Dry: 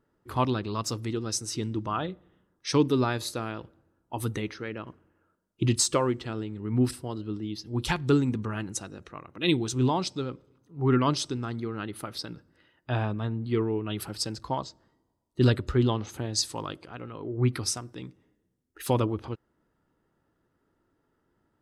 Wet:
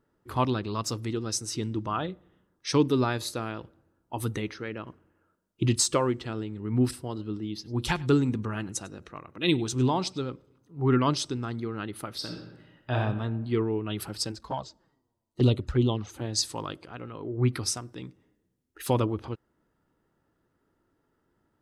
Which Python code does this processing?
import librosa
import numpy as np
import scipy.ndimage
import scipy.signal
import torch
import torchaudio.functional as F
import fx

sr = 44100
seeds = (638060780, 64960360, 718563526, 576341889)

y = fx.echo_single(x, sr, ms=99, db=-22.5, at=(7.06, 10.32))
y = fx.reverb_throw(y, sr, start_s=12.16, length_s=0.8, rt60_s=1.1, drr_db=1.5)
y = fx.env_flanger(y, sr, rest_ms=9.2, full_db=-20.0, at=(14.31, 16.2), fade=0.02)